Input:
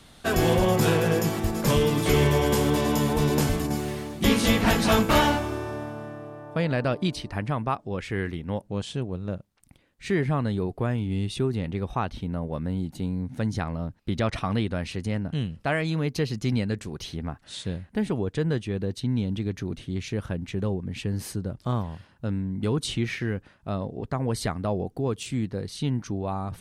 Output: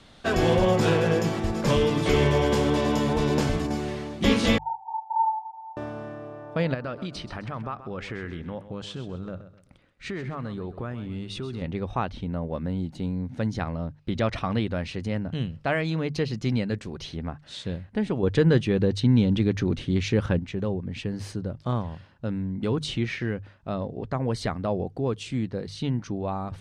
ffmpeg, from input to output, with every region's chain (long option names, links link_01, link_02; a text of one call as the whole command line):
ffmpeg -i in.wav -filter_complex "[0:a]asettb=1/sr,asplit=3[link_01][link_02][link_03];[link_01]atrim=end=4.584[link_04];[link_02]atrim=start=4.58:end=5.77,asetpts=PTS-STARTPTS,afade=type=in:duration=0.004:curve=qsin,afade=type=out:start_time=1.186:duration=0.004:curve=qsin,asuperpass=centerf=850:order=8:qfactor=6.3,aecho=1:1:5.4:0.93,atrim=end_sample=52479[link_05];[link_03]atrim=start=5.766[link_06];[link_04][link_05]acrossfade=duration=0.004:curve1=hsin:curve2=qsin[link_07];[link_07][link_06]acrossfade=duration=0.004:curve1=qsin:curve2=hsin,asettb=1/sr,asplit=3[link_08][link_09][link_10];[link_08]atrim=end=6.744[link_11];[link_09]atrim=start=6.74:end=11.62,asetpts=PTS-STARTPTS,afade=type=in:duration=0.004:curve=qsin,afade=type=out:start_time=4.876:duration=0.004:curve=qsin,equalizer=frequency=1300:width_type=o:width=0.44:gain=7.5,acompressor=threshold=-30dB:ratio=4:attack=3.2:release=140:knee=1:detection=peak,aecho=1:1:130|260|390:0.224|0.0739|0.0244,atrim=end_sample=215208[link_12];[link_10]atrim=start=11.616[link_13];[link_11][link_12]acrossfade=duration=0.004:curve1=hsin:curve2=qsin[link_14];[link_14][link_13]acrossfade=duration=0.004:curve1=qsin:curve2=hsin,asettb=1/sr,asplit=3[link_15][link_16][link_17];[link_15]atrim=end=18.234[link_18];[link_16]atrim=start=18.23:end=20.39,asetpts=PTS-STARTPTS,afade=type=in:duration=0.004:curve=qsin,afade=type=out:start_time=2.156:duration=0.004:curve=qsin,bandreject=frequency=650:width=8.9,acontrast=80[link_19];[link_17]atrim=start=20.386[link_20];[link_18][link_19]acrossfade=duration=0.004:curve1=hsin:curve2=qsin[link_21];[link_21][link_20]acrossfade=duration=0.004:curve1=qsin:curve2=hsin,lowpass=5700,equalizer=frequency=550:width_type=o:width=0.26:gain=3,bandreject=frequency=50:width_type=h:width=6,bandreject=frequency=100:width_type=h:width=6,bandreject=frequency=150:width_type=h:width=6" out.wav